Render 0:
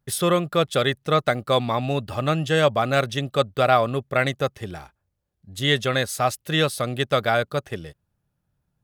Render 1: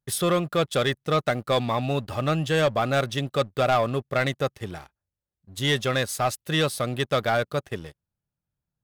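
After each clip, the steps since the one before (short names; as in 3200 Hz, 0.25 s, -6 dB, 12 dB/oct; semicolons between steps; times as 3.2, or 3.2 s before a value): sample leveller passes 2; gain -8.5 dB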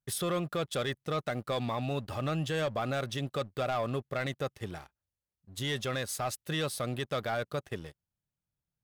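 limiter -20 dBFS, peak gain reduction 7 dB; gain -5 dB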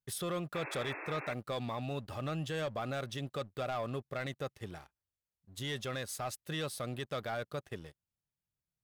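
painted sound noise, 0.54–1.34, 280–2700 Hz -39 dBFS; gain -5 dB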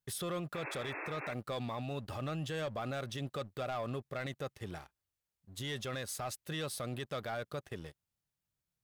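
limiter -34 dBFS, peak gain reduction 7.5 dB; gain +2.5 dB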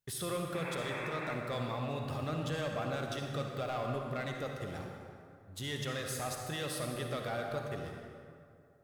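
reverb RT60 2.4 s, pre-delay 44 ms, DRR 1.5 dB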